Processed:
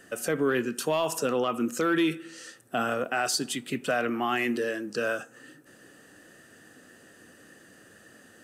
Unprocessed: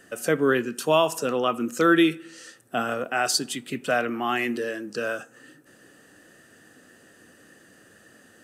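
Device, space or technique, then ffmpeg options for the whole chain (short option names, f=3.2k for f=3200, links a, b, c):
soft clipper into limiter: -af "asoftclip=type=tanh:threshold=-9.5dB,alimiter=limit=-17.5dB:level=0:latency=1:release=55"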